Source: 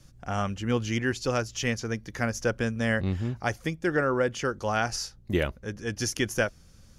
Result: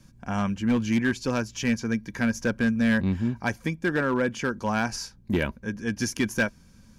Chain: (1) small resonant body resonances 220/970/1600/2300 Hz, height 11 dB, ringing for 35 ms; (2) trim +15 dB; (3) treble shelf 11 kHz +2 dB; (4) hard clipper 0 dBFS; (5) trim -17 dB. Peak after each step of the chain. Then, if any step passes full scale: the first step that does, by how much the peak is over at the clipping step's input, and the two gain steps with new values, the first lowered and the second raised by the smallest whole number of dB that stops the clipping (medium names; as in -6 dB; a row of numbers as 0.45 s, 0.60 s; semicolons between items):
-8.0 dBFS, +7.0 dBFS, +7.0 dBFS, 0.0 dBFS, -17.0 dBFS; step 2, 7.0 dB; step 2 +8 dB, step 5 -10 dB